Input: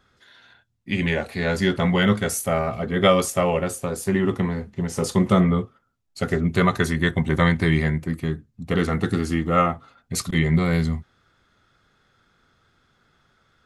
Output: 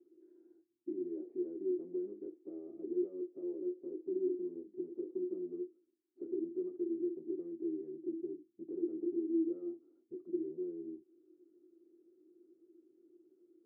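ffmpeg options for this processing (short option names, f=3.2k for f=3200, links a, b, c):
-af "acompressor=threshold=-33dB:ratio=6,asoftclip=type=tanh:threshold=-35dB,asuperpass=centerf=340:order=4:qfactor=7.3,volume=16.5dB"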